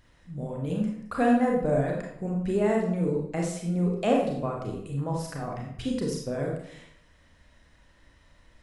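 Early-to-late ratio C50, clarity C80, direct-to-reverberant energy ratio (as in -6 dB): 2.5 dB, 6.0 dB, -1.5 dB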